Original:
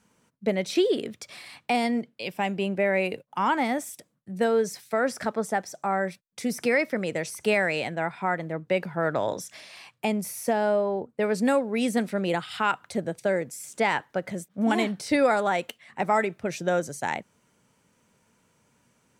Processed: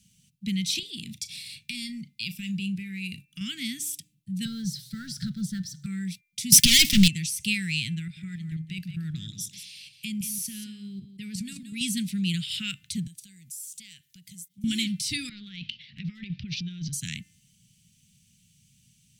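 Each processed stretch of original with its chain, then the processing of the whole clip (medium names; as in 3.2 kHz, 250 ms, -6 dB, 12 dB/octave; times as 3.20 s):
0.79–3.41 s: band-stop 3.1 kHz + compression 3:1, threshold -28 dBFS + doubling 36 ms -14 dB
4.45–5.86 s: companding laws mixed up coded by mu + FFT filter 100 Hz 0 dB, 140 Hz +11 dB, 270 Hz -4 dB, 630 Hz -5 dB, 980 Hz -20 dB, 1.4 kHz +8 dB, 2.5 kHz -17 dB, 4.2 kHz -1 dB, 6.9 kHz -12 dB
6.52–7.08 s: dynamic bell 4.9 kHz, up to +3 dB, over -40 dBFS, Q 0.7 + waveshaping leveller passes 5
7.99–11.81 s: level held to a coarse grid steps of 10 dB + delay 175 ms -11 dB
13.07–14.64 s: pre-emphasis filter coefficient 0.8 + compression 2.5:1, threshold -46 dBFS
15.29–16.93 s: steep low-pass 5 kHz 48 dB/octave + compression 3:1, threshold -35 dBFS + transient shaper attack +3 dB, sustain +10 dB
whole clip: elliptic band-stop 170–3000 Hz, stop band 80 dB; de-hum 297.6 Hz, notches 9; trim +8 dB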